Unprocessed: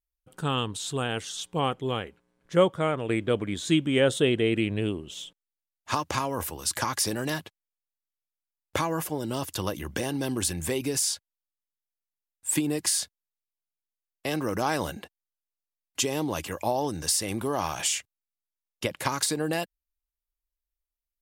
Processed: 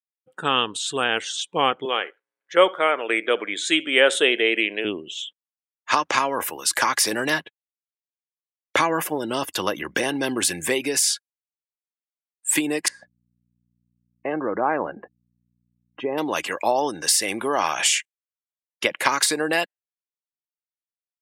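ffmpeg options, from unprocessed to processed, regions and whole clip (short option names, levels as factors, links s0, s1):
-filter_complex "[0:a]asettb=1/sr,asplit=3[s0][s1][s2];[s0]atrim=end=1.854[s3];[s1]atrim=start=1.85:end=4.85,asetpts=PTS-STARTPTS,afade=t=in:d=0.004:c=qsin,afade=t=out:st=2.996:d=0.004:c=qsin,highpass=380,highshelf=f=7800:g=3,aecho=1:1:69|138:0.0891|0.0276,atrim=end_sample=132300[s4];[s2]atrim=start=4.846[s5];[s3][s4]acrossfade=d=0.004:c1=hsin:c2=qsin[s6];[s6][s5]acrossfade=d=0.004:c1=qsin:c2=hsin,asettb=1/sr,asplit=3[s7][s8][s9];[s7]atrim=end=7.114[s10];[s8]atrim=start=7.11:end=10.75,asetpts=PTS-STARTPTS,afade=t=in:d=0.004:c=qsin,afade=t=out:st=3.636:d=0.004:c=qsin,agate=range=0.0224:threshold=0.00794:ratio=3:release=100:detection=peak,lowshelf=f=220:g=5.5[s11];[s9]atrim=start=10.746[s12];[s10][s11]acrossfade=d=0.004:c1=hsin:c2=qsin[s13];[s13][s12]acrossfade=d=0.004:c1=qsin:c2=hsin,asettb=1/sr,asplit=3[s14][s15][s16];[s14]atrim=end=12.884[s17];[s15]atrim=start=12.88:end=16.18,asetpts=PTS-STARTPTS,afade=t=in:d=0.004:c=qsin,afade=t=out:st=3.296:d=0.004:c=qsin,lowpass=1100,aeval=exprs='val(0)+0.00224*(sin(2*PI*60*n/s)+sin(2*PI*2*60*n/s)/2+sin(2*PI*3*60*n/s)/3+sin(2*PI*4*60*n/s)/4+sin(2*PI*5*60*n/s)/5)':c=same[s18];[s16]atrim=start=16.176[s19];[s17][s18]acrossfade=d=0.004:c1=hsin:c2=qsin[s20];[s20][s19]acrossfade=d=0.004:c1=qsin:c2=hsin,equalizer=f=2000:w=0.98:g=7,afftdn=nr=22:nf=-45,highpass=310,volume=1.88"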